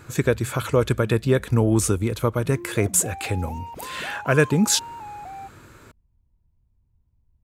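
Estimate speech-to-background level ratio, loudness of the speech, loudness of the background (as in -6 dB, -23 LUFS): 17.5 dB, -22.0 LUFS, -39.5 LUFS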